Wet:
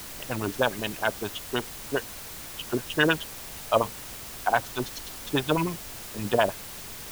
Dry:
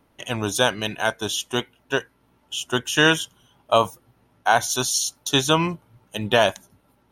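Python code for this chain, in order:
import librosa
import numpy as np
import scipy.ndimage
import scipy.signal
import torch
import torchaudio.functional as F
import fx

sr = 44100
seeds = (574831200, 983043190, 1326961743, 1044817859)

y = fx.filter_lfo_lowpass(x, sr, shape='sine', hz=9.7, low_hz=290.0, high_hz=2900.0, q=1.6)
y = fx.dmg_noise_colour(y, sr, seeds[0], colour='pink', level_db=-40.0)
y = fx.quant_dither(y, sr, seeds[1], bits=6, dither='triangular')
y = F.gain(torch.from_numpy(y), -5.5).numpy()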